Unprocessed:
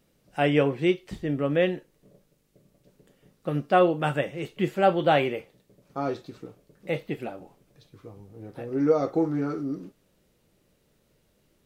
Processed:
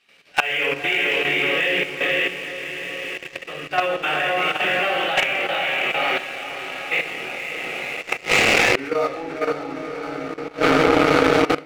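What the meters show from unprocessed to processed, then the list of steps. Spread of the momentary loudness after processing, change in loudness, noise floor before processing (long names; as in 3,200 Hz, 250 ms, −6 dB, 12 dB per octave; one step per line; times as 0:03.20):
13 LU, +5.5 dB, −68 dBFS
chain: resonant band-pass 2,500 Hz, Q 2.2
feedback delay with all-pass diffusion 486 ms, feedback 59%, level −3 dB
rectangular room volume 140 cubic metres, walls mixed, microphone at 3.6 metres
output level in coarse steps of 10 dB
leveller curve on the samples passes 2
automatic gain control gain up to 13 dB
gate with flip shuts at −15 dBFS, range −28 dB
boost into a limiter +20.5 dB
level −1 dB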